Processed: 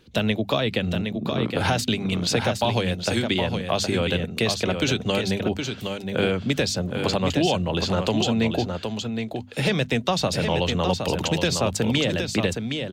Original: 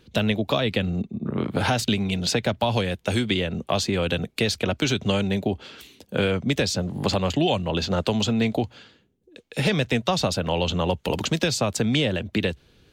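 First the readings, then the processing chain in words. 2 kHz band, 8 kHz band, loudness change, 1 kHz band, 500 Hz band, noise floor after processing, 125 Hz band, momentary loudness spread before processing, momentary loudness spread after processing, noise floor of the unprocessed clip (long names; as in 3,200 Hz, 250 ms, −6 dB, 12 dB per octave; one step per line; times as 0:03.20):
+1.0 dB, +1.0 dB, +0.5 dB, +1.0 dB, +1.0 dB, −38 dBFS, 0.0 dB, 5 LU, 5 LU, −62 dBFS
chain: mains-hum notches 50/100/150/200/250 Hz
single-tap delay 766 ms −6 dB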